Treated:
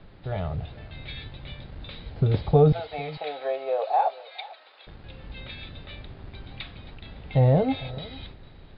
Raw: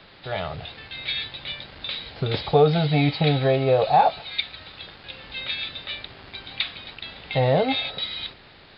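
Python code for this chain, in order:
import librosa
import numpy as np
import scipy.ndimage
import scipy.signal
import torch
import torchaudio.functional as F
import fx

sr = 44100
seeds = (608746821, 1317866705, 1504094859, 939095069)

y = fx.highpass(x, sr, hz=550.0, slope=24, at=(2.72, 4.87))
y = fx.tilt_eq(y, sr, slope=-4.0)
y = y + 10.0 ** (-20.0 / 20.0) * np.pad(y, (int(449 * sr / 1000.0), 0))[:len(y)]
y = F.gain(torch.from_numpy(y), -6.5).numpy()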